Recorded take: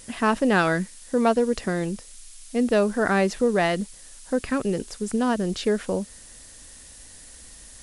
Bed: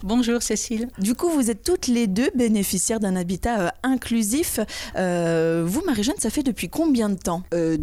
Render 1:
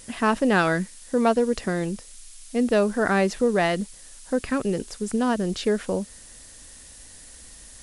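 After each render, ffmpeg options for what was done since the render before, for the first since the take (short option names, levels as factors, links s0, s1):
-af anull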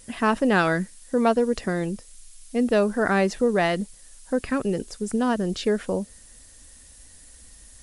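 -af "afftdn=nr=6:nf=-46"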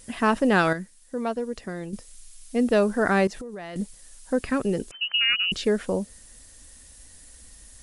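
-filter_complex "[0:a]asettb=1/sr,asplit=3[s0][s1][s2];[s0]atrim=end=3.274[s3];[s1]atrim=start=3.27:end=3.76,asetpts=PTS-STARTPTS,afade=t=in:d=0.004:c=qsin,afade=t=out:st=0.486:d=0.004:c=qsin,acompressor=threshold=0.02:ratio=8:attack=3.2:release=140:knee=1:detection=peak[s4];[s2]atrim=start=3.756[s5];[s3][s4]acrossfade=d=0.004:c1=hsin:c2=qsin[s6];[s6][s5]acrossfade=d=0.004:c1=qsin:c2=hsin,asettb=1/sr,asplit=3[s7][s8][s9];[s7]atrim=end=4.914[s10];[s8]atrim=start=4.91:end=5.52,asetpts=PTS-STARTPTS,afade=t=in:d=0.004:c=qsin,afade=t=out:st=0.606:d=0.004:c=qsin,lowpass=f=2600:t=q:w=0.5098,lowpass=f=2600:t=q:w=0.6013,lowpass=f=2600:t=q:w=0.9,lowpass=f=2600:t=q:w=2.563,afreqshift=-3100[s11];[s9]atrim=start=5.516[s12];[s10][s11]acrossfade=d=0.004:c1=hsin:c2=qsin[s13];[s13][s12]acrossfade=d=0.004:c1=qsin:c2=hsin,asplit=3[s14][s15][s16];[s14]atrim=end=0.732[s17];[s15]atrim=start=0.728:end=1.932,asetpts=PTS-STARTPTS,volume=0.398[s18];[s16]atrim=start=1.928[s19];[s17][s18]acrossfade=d=0.004:c1=hsin:c2=hsin[s20];[s20][s19]acrossfade=d=0.004:c1=hsin:c2=hsin"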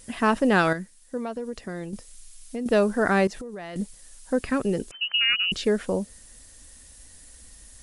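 -filter_complex "[0:a]asettb=1/sr,asplit=3[s0][s1][s2];[s0]atrim=end=1.174[s3];[s1]atrim=start=1.17:end=2.66,asetpts=PTS-STARTPTS,afade=t=in:d=0.004:c=qsin,afade=t=out:st=1.486:d=0.004:c=qsin,acompressor=threshold=0.0447:ratio=6:attack=3.2:release=140:knee=1:detection=peak[s4];[s2]atrim=start=2.656[s5];[s3][s4]acrossfade=d=0.004:c1=hsin:c2=qsin[s6];[s6][s5]acrossfade=d=0.004:c1=qsin:c2=hsin"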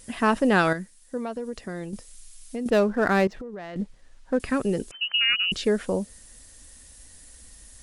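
-filter_complex "[0:a]asettb=1/sr,asplit=3[s0][s1][s2];[s0]atrim=end=2.704[s3];[s1]atrim=start=2.7:end=4.4,asetpts=PTS-STARTPTS,afade=t=in:d=0.004:c=qsin,afade=t=out:st=1.696:d=0.004:c=qsin,adynamicsmooth=sensitivity=5:basefreq=2600[s4];[s2]atrim=start=4.396[s5];[s3][s4]acrossfade=d=0.004:c1=hsin:c2=qsin[s6];[s6][s5]acrossfade=d=0.004:c1=qsin:c2=hsin"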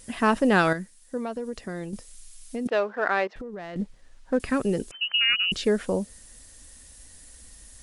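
-filter_complex "[0:a]asettb=1/sr,asplit=3[s0][s1][s2];[s0]atrim=end=2.674[s3];[s1]atrim=start=2.67:end=3.36,asetpts=PTS-STARTPTS,afade=t=in:d=0.004:c=qsin,afade=t=out:st=0.686:d=0.004:c=qsin,highpass=560,lowpass=3600[s4];[s2]atrim=start=3.356[s5];[s3][s4]acrossfade=d=0.004:c1=hsin:c2=qsin[s6];[s6][s5]acrossfade=d=0.004:c1=qsin:c2=hsin"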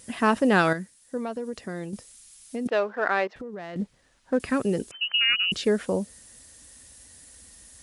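-af "highpass=73"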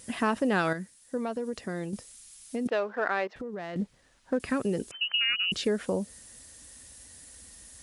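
-af "acompressor=threshold=0.0447:ratio=2"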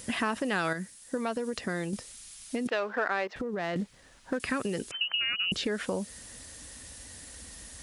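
-filter_complex "[0:a]asplit=2[s0][s1];[s1]alimiter=limit=0.0891:level=0:latency=1:release=117,volume=1.26[s2];[s0][s2]amix=inputs=2:normalize=0,acrossover=split=1100|5500[s3][s4][s5];[s3]acompressor=threshold=0.0282:ratio=4[s6];[s4]acompressor=threshold=0.0316:ratio=4[s7];[s5]acompressor=threshold=0.00398:ratio=4[s8];[s6][s7][s8]amix=inputs=3:normalize=0"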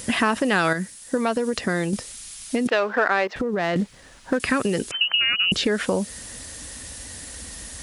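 -af "volume=2.82"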